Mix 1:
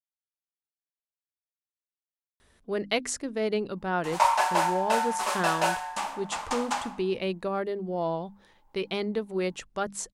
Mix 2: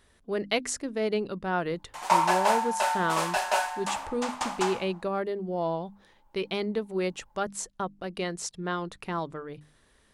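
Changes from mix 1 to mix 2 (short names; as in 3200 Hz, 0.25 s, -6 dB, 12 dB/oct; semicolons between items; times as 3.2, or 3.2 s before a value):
speech: entry -2.40 s; background: entry -2.10 s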